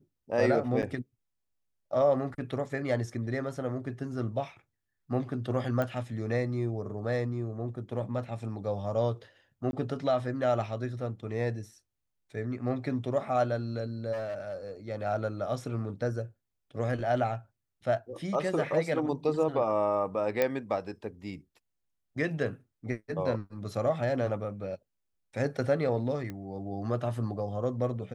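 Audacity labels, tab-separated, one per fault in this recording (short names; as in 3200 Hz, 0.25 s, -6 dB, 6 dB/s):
0.820000	0.830000	gap 8.2 ms
5.820000	5.820000	pop -19 dBFS
9.710000	9.730000	gap 21 ms
14.120000	14.700000	clipped -31.5 dBFS
20.420000	20.420000	pop -13 dBFS
26.300000	26.300000	pop -25 dBFS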